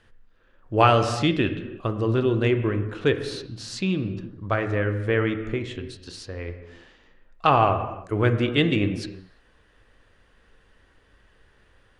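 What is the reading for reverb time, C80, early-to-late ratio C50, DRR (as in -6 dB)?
no single decay rate, 11.0 dB, 9.5 dB, 7.5 dB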